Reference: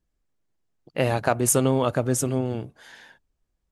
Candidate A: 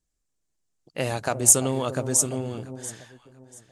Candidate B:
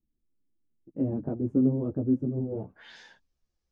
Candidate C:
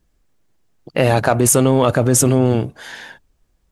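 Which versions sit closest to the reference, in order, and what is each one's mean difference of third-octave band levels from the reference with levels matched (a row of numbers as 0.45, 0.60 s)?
C, A, B; 2.5, 4.5, 11.0 dB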